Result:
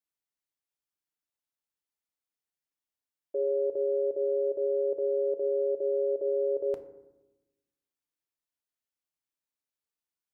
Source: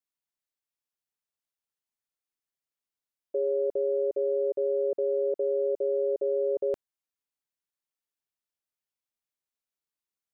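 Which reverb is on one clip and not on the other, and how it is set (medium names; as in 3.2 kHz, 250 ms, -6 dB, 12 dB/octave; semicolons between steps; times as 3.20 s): FDN reverb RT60 1 s, low-frequency decay 1.45×, high-frequency decay 0.4×, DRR 7.5 dB; trim -3 dB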